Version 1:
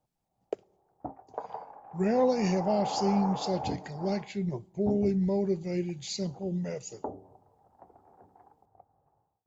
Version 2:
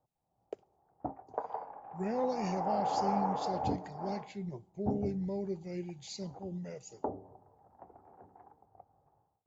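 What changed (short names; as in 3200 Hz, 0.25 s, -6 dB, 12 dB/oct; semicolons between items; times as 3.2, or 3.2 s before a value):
speech -8.5 dB; background: send on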